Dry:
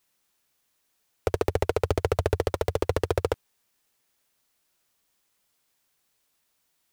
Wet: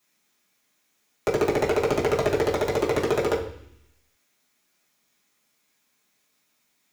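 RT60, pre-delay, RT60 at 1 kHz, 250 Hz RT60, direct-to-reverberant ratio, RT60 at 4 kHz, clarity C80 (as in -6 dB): 0.65 s, 3 ms, 0.65 s, 0.95 s, -6.0 dB, 0.95 s, 12.0 dB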